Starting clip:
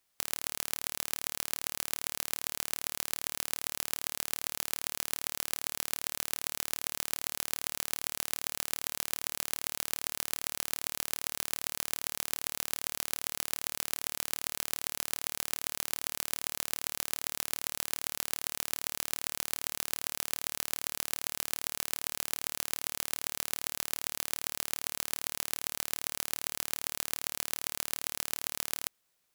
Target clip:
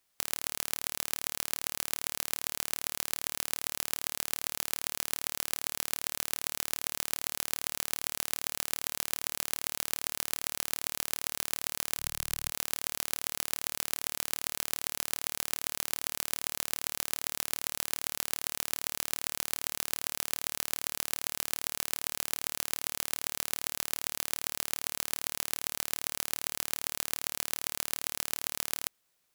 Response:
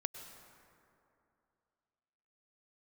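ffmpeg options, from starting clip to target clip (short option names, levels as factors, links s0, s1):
-filter_complex "[0:a]asplit=3[s0][s1][s2];[s0]afade=t=out:st=11.98:d=0.02[s3];[s1]asubboost=boost=3.5:cutoff=160,afade=t=in:st=11.98:d=0.02,afade=t=out:st=12.49:d=0.02[s4];[s2]afade=t=in:st=12.49:d=0.02[s5];[s3][s4][s5]amix=inputs=3:normalize=0,volume=1.12"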